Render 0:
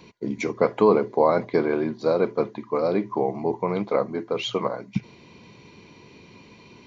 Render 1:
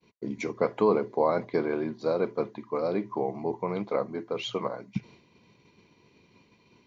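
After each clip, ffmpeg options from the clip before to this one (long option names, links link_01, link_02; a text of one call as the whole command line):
ffmpeg -i in.wav -af "agate=range=-33dB:threshold=-42dB:ratio=3:detection=peak,volume=-5.5dB" out.wav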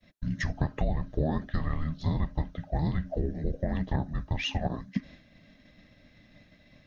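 ffmpeg -i in.wav -af "afreqshift=-390,acompressor=threshold=-27dB:ratio=6,volume=3.5dB" out.wav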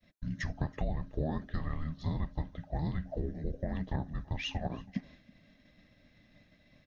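ffmpeg -i in.wav -af "aecho=1:1:326:0.0668,volume=-5.5dB" out.wav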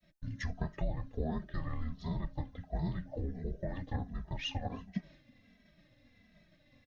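ffmpeg -i in.wav -filter_complex "[0:a]asplit=2[link_01][link_02];[link_02]adelay=2.7,afreqshift=-1.4[link_03];[link_01][link_03]amix=inputs=2:normalize=1,volume=1dB" out.wav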